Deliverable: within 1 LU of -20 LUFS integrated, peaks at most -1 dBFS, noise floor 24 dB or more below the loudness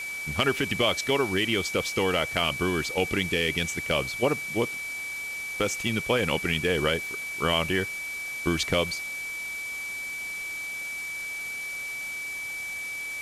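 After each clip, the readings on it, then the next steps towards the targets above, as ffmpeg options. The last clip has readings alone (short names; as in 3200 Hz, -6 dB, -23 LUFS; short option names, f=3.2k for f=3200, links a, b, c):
steady tone 2300 Hz; tone level -32 dBFS; noise floor -35 dBFS; noise floor target -52 dBFS; loudness -27.5 LUFS; peak -11.5 dBFS; loudness target -20.0 LUFS
-> -af "bandreject=f=2.3k:w=30"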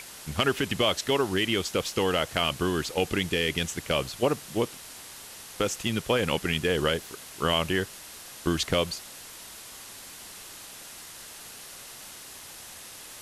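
steady tone none; noise floor -45 dBFS; noise floor target -52 dBFS
-> -af "afftdn=nr=7:nf=-45"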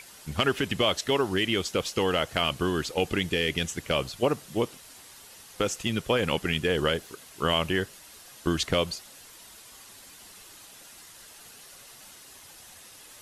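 noise floor -50 dBFS; noise floor target -52 dBFS
-> -af "afftdn=nr=6:nf=-50"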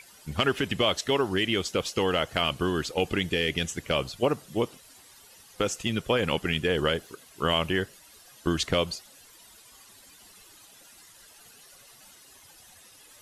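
noise floor -54 dBFS; loudness -27.5 LUFS; peak -12.0 dBFS; loudness target -20.0 LUFS
-> -af "volume=7.5dB"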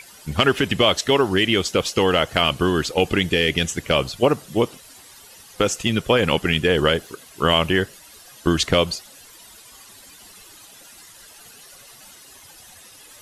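loudness -20.0 LUFS; peak -4.5 dBFS; noise floor -46 dBFS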